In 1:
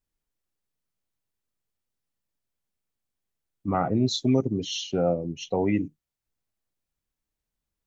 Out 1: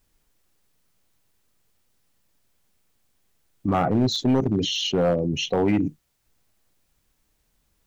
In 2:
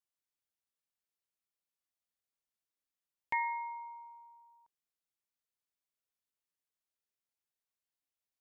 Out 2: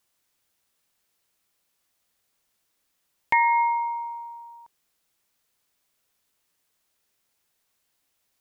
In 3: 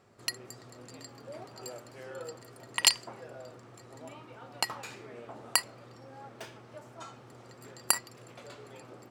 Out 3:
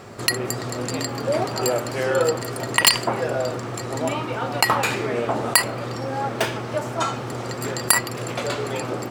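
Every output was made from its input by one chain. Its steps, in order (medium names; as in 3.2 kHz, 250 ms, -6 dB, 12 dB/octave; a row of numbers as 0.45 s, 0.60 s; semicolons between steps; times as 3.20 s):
in parallel at -0.5 dB: compressor with a negative ratio -39 dBFS, ratio -1; on the sum: overload inside the chain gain 18 dB; dynamic bell 5.8 kHz, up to -7 dB, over -47 dBFS, Q 1.2; normalise loudness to -23 LUFS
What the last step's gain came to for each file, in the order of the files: +3.5 dB, +11.5 dB, +14.0 dB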